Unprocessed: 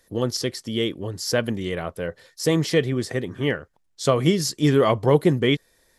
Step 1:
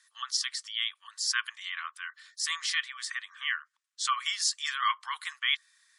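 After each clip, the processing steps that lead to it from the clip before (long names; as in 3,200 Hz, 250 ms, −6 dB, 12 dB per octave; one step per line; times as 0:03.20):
Chebyshev band-pass filter 1,100–10,000 Hz, order 5
gate on every frequency bin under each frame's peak −30 dB strong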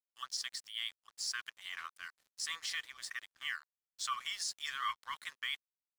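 brickwall limiter −20.5 dBFS, peak gain reduction 7.5 dB
dead-zone distortion −47 dBFS
level −5.5 dB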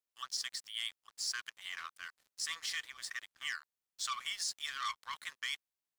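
saturating transformer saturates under 2,900 Hz
level +1.5 dB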